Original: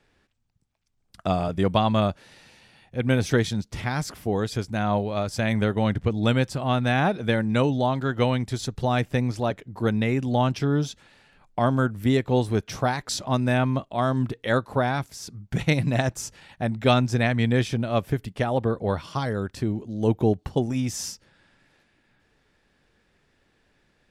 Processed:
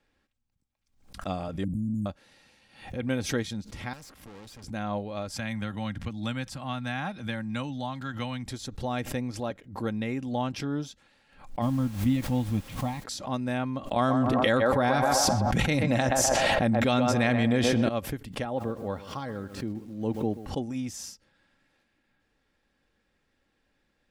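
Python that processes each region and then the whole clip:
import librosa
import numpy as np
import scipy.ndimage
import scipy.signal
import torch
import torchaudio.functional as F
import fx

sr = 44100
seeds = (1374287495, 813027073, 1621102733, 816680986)

y = fx.chain(x, sr, fx.brickwall_bandstop(low_hz=310.0, high_hz=6600.0),
    fx.env_flatten(amount_pct=100), at=(1.64, 2.06))
y = fx.chain(y, sr, fx.tube_stage(drive_db=37.0, bias=0.8),
    fx.band_squash(depth_pct=40), at=(3.93, 4.64))
y = fx.chain(y, sr, fx.peak_eq(hz=430.0, db=-13.5, octaves=0.96),
    fx.band_squash(depth_pct=40), at=(5.32, 8.46))
y = fx.low_shelf_res(y, sr, hz=490.0, db=7.5, q=1.5, at=(11.61, 13.02), fade=0.02)
y = fx.fixed_phaser(y, sr, hz=1500.0, stages=6, at=(11.61, 13.02), fade=0.02)
y = fx.dmg_noise_colour(y, sr, seeds[0], colour='pink', level_db=-42.0, at=(11.61, 13.02), fade=0.02)
y = fx.chain(y, sr, fx.echo_banded(ms=126, feedback_pct=48, hz=730.0, wet_db=-5.0),
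    fx.env_flatten(amount_pct=100), at=(13.96, 17.89))
y = fx.chain(y, sr, fx.highpass(hz=69.0, slope=12),
    fx.high_shelf(hz=3500.0, db=-7.0),
    fx.echo_crushed(ms=131, feedback_pct=35, bits=7, wet_db=-14), at=(18.45, 20.47))
y = y + 0.34 * np.pad(y, (int(3.7 * sr / 1000.0), 0))[:len(y)]
y = fx.pre_swell(y, sr, db_per_s=110.0)
y = y * 10.0 ** (-8.0 / 20.0)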